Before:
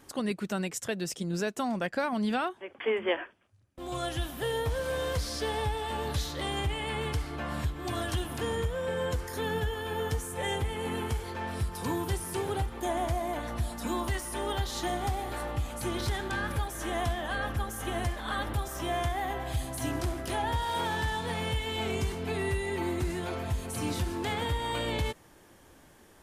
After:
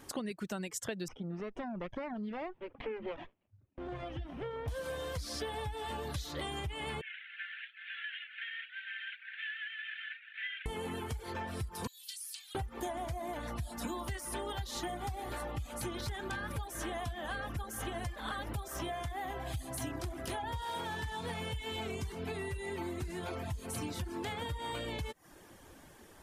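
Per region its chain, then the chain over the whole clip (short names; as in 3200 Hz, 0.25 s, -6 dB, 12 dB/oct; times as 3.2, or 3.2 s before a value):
1.08–4.68 minimum comb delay 0.34 ms + LPF 1900 Hz + compressor 2:1, threshold -42 dBFS
7.01–10.66 CVSD 16 kbps + steep high-pass 1500 Hz 96 dB/oct
11.87–12.55 ladder high-pass 2700 Hz, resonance 25% + bell 4400 Hz +7.5 dB 0.27 oct
whole clip: compressor, threshold -37 dBFS; reverb removal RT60 0.55 s; gain +2 dB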